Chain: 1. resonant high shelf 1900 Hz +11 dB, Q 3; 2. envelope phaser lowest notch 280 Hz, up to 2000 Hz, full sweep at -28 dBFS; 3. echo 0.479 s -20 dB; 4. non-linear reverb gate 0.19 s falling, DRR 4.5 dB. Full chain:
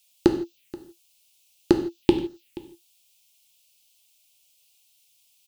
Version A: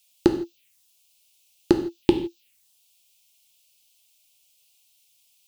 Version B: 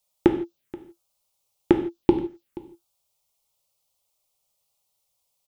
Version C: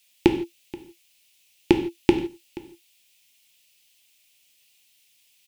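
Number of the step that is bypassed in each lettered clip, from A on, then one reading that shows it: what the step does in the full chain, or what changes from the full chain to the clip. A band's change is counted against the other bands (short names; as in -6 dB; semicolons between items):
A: 3, momentary loudness spread change -8 LU; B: 1, 4 kHz band -8.0 dB; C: 2, 2 kHz band +5.0 dB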